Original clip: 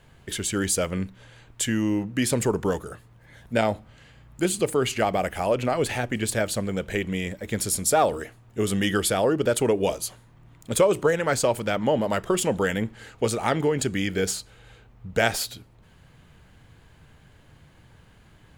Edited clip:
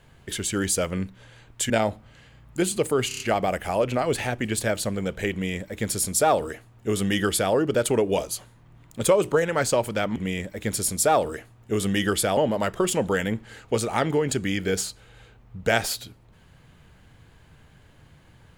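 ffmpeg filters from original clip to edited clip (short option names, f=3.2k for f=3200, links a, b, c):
-filter_complex "[0:a]asplit=8[a][b][c][d][e][f][g][h];[a]atrim=end=1.702[i];[b]atrim=start=3.528:end=4.942[j];[c]atrim=start=4.908:end=4.942[k];[d]atrim=start=4.908:end=4.942[l];[e]atrim=start=4.908:end=4.942[m];[f]atrim=start=4.908:end=11.872[n];[g]atrim=start=7.028:end=9.242[o];[h]atrim=start=11.868[p];[i][j]acrossfade=d=0.004:c1=hsin:c2=hsin[q];[q][k]acrossfade=d=0.004:c1=hsin:c2=hsin[r];[r][l]acrossfade=d=0.004:c1=hsin:c2=hsin[s];[s][m]acrossfade=d=0.004:c1=hsin:c2=hsin[t];[t][n]acrossfade=d=0.004:c1=hsin:c2=hsin[u];[u][o]acrossfade=d=0.004:c1=hsin:c2=hsin[v];[v][p]acrossfade=d=0.004:c1=hsin:c2=hsin"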